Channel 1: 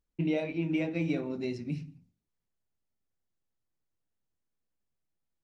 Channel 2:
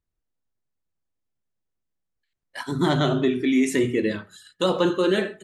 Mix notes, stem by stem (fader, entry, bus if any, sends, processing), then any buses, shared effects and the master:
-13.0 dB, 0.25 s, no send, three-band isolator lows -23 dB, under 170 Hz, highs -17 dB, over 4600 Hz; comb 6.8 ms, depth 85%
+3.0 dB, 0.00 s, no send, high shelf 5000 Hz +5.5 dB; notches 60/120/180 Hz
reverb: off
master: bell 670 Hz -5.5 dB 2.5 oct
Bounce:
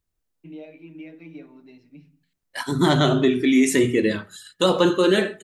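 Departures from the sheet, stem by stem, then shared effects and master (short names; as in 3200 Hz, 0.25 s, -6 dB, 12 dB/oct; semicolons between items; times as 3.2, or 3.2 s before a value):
stem 2: missing notches 60/120/180 Hz; master: missing bell 670 Hz -5.5 dB 2.5 oct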